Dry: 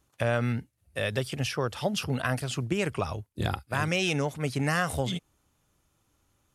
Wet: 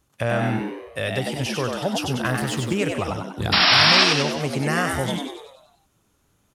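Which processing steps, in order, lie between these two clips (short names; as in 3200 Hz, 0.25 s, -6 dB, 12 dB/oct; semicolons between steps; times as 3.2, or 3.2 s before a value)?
2.25–2.74 G.711 law mismatch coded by mu; 3.52–4.04 painted sound noise 600–5600 Hz -20 dBFS; frequency-shifting echo 96 ms, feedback 51%, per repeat +88 Hz, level -4 dB; gain +3 dB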